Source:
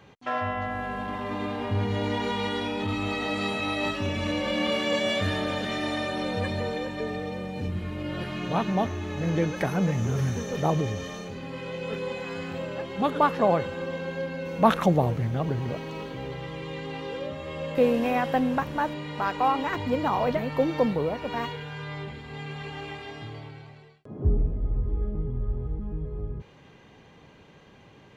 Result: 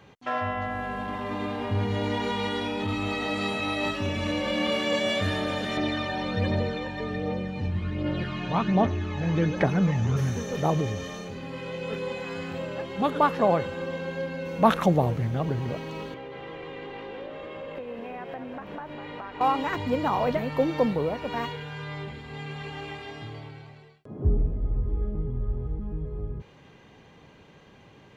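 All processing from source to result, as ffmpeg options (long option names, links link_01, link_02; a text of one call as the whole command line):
ffmpeg -i in.wav -filter_complex "[0:a]asettb=1/sr,asplit=3[link_01][link_02][link_03];[link_01]atrim=end=5.774[link_04];[link_02]atrim=start=5.77:end=10.17,asetpts=PTS-STARTPTS,afade=type=in:duration=0.004:curve=qsin,afade=type=out:start_time=4.396:duration=0.004:curve=qsin,lowpass=5000,aphaser=in_gain=1:out_gain=1:delay=1.3:decay=0.44:speed=1.3:type=triangular[link_05];[link_03]atrim=start=10.166[link_06];[link_04][link_05]acrossfade=duration=0.004:curve1=hsin:curve2=qsin[link_07];[link_07][link_06]acrossfade=duration=0.004:curve1=qsin:curve2=hsin,asettb=1/sr,asplit=3[link_08][link_09][link_10];[link_08]atrim=end=16.144[link_11];[link_09]atrim=start=16.14:end=19.41,asetpts=PTS-STARTPTS,afade=type=in:duration=0.004:curve=qsin,afade=type=out:start_time=3.266:duration=0.004:curve=qsin,acrossover=split=260 3500:gain=0.224 1 0.178[link_12][link_13][link_14];[link_12][link_13][link_14]amix=inputs=3:normalize=0,acompressor=threshold=-35dB:ratio=6:attack=3.2:release=140:knee=1:detection=peak,asplit=8[link_15][link_16][link_17][link_18][link_19][link_20][link_21][link_22];[link_16]adelay=200,afreqshift=-52,volume=-8dB[link_23];[link_17]adelay=400,afreqshift=-104,volume=-12.6dB[link_24];[link_18]adelay=600,afreqshift=-156,volume=-17.2dB[link_25];[link_19]adelay=800,afreqshift=-208,volume=-21.7dB[link_26];[link_20]adelay=1000,afreqshift=-260,volume=-26.3dB[link_27];[link_21]adelay=1200,afreqshift=-312,volume=-30.9dB[link_28];[link_22]adelay=1400,afreqshift=-364,volume=-35.5dB[link_29];[link_15][link_23][link_24][link_25][link_26][link_27][link_28][link_29]amix=inputs=8:normalize=0,atrim=end_sample=144207[link_30];[link_10]atrim=start=19.406[link_31];[link_11][link_30]acrossfade=duration=0.004:curve1=hsin:curve2=qsin[link_32];[link_32][link_31]acrossfade=duration=0.004:curve1=qsin:curve2=hsin" out.wav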